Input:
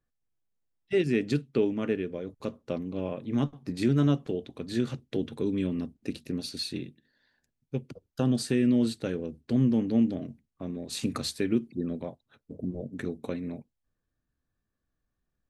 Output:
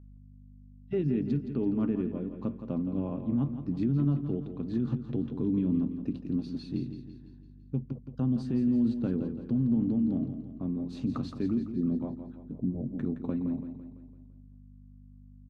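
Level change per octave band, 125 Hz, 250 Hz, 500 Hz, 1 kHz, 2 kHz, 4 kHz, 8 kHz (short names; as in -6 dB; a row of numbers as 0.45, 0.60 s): +0.5 dB, 0.0 dB, -6.5 dB, -5.5 dB, under -10 dB, under -15 dB, under -20 dB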